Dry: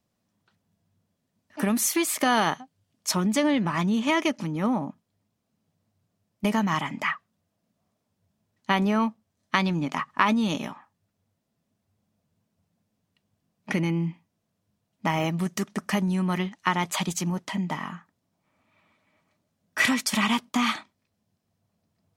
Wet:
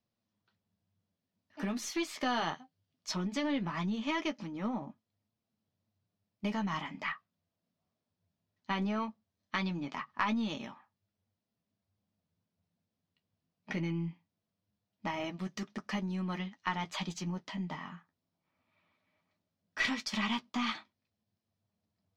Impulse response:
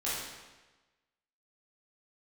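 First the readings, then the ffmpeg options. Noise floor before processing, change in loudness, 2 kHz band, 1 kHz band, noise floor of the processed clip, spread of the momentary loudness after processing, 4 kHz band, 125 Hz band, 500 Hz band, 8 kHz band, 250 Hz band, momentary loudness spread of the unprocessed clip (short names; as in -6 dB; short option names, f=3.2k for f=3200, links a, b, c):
-78 dBFS, -10.0 dB, -9.5 dB, -10.5 dB, under -85 dBFS, 10 LU, -8.5 dB, -10.0 dB, -11.0 dB, -16.0 dB, -10.0 dB, 10 LU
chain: -af "flanger=delay=8.5:depth=3.9:regen=-38:speed=0.19:shape=triangular,aeval=exprs='0.398*(cos(1*acos(clip(val(0)/0.398,-1,1)))-cos(1*PI/2))+0.0282*(cos(4*acos(clip(val(0)/0.398,-1,1)))-cos(4*PI/2))':c=same,highshelf=f=7k:t=q:w=1.5:g=-13.5,volume=-6.5dB"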